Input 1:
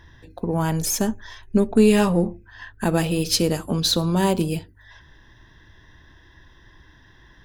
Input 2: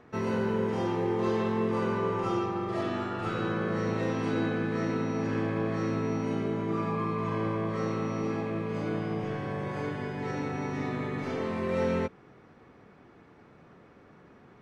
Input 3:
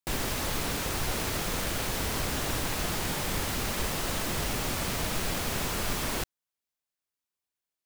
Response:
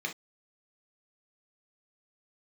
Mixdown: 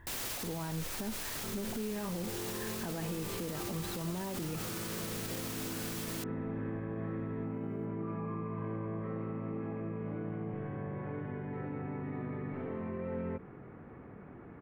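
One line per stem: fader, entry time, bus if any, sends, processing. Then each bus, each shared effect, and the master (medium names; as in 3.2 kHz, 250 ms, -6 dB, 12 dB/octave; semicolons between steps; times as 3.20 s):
-5.0 dB, 0.00 s, bus A, no send, none
-14.0 dB, 1.30 s, bus A, no send, bass shelf 380 Hz +7.5 dB; level flattener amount 50%
+2.0 dB, 0.00 s, no bus, no send, tilt EQ +2 dB/octave; auto duck -12 dB, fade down 0.50 s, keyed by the first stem
bus A: 0.0 dB, low-pass 2.3 kHz 24 dB/octave; peak limiter -22 dBFS, peak gain reduction 11 dB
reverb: none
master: peak limiter -29 dBFS, peak gain reduction 10 dB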